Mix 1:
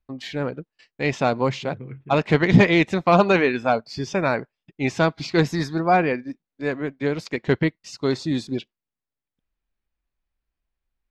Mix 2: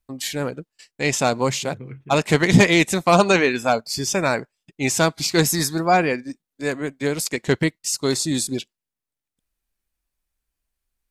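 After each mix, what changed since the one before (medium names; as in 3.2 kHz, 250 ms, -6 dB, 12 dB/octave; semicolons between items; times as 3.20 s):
master: remove distance through air 240 m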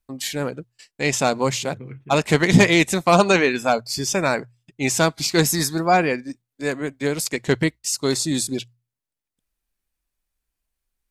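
master: add hum notches 60/120 Hz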